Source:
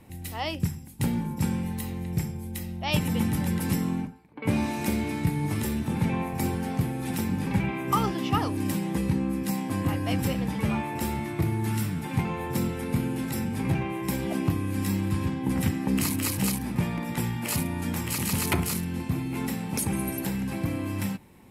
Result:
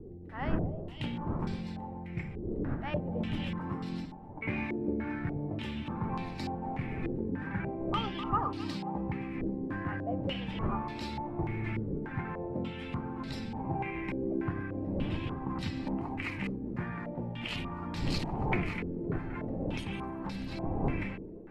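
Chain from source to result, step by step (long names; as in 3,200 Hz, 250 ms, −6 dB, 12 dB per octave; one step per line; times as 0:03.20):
wind on the microphone 210 Hz −32 dBFS
reversed playback
upward compression, threshold −38 dBFS
reversed playback
echo with a time of its own for lows and highs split 370 Hz, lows 108 ms, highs 261 ms, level −12 dB
flanger 1.3 Hz, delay 2.4 ms, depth 1.3 ms, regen +71%
low-pass on a step sequencer 3.4 Hz 430–4,300 Hz
level −5 dB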